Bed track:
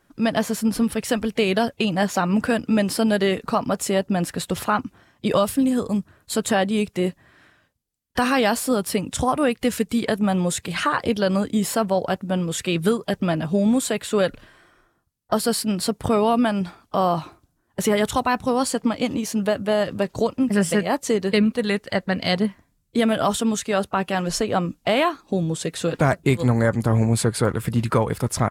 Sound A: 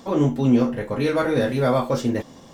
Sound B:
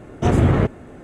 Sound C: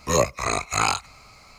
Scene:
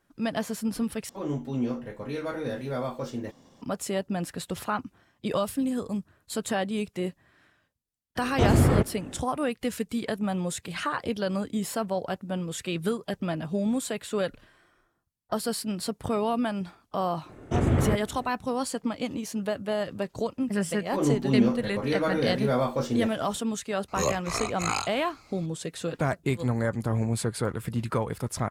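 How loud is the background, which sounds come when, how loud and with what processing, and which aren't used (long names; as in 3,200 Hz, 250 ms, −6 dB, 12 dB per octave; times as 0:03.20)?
bed track −8 dB
0:01.09: overwrite with A −11.5 dB
0:08.16: mix in B −4.5 dB
0:17.29: mix in B −7.5 dB
0:20.86: mix in A −5.5 dB
0:23.88: mix in C −7 dB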